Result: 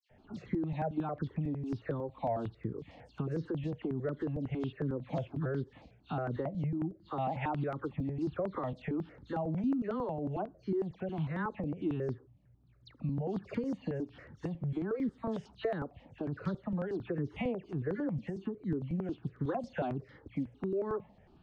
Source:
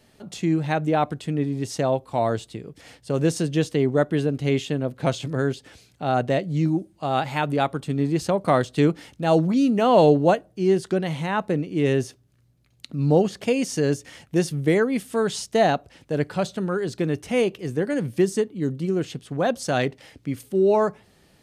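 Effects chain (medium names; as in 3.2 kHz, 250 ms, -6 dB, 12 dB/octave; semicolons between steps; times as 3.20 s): tape spacing loss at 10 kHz 41 dB; peak limiter -16.5 dBFS, peak gain reduction 9.5 dB; phase dispersion lows, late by 104 ms, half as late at 2.5 kHz; compression 4:1, threshold -31 dBFS, peak gain reduction 10.5 dB; stepped phaser 11 Hz 390–2600 Hz; trim +2 dB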